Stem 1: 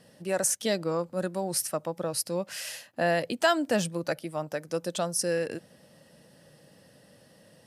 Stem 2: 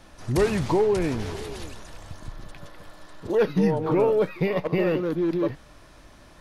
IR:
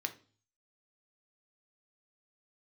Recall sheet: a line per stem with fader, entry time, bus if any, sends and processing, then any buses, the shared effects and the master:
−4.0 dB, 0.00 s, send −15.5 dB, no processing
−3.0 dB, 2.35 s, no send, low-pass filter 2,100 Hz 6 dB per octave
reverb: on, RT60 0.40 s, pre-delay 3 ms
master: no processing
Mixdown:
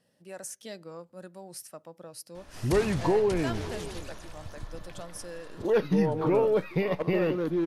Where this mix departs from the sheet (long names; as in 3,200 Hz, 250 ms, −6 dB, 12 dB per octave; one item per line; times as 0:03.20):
stem 1 −4.0 dB → −15.0 dB
stem 2: missing low-pass filter 2,100 Hz 6 dB per octave